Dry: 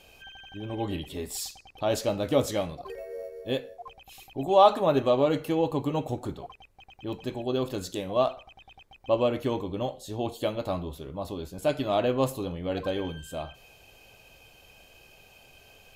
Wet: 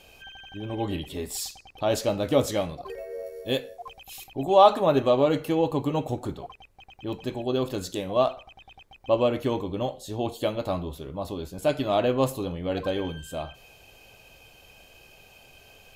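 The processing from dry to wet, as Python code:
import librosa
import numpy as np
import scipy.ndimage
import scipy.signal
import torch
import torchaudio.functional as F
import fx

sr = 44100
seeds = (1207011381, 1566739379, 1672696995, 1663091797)

y = fx.high_shelf(x, sr, hz=3700.0, db=8.5, at=(3.26, 4.24))
y = F.gain(torch.from_numpy(y), 2.0).numpy()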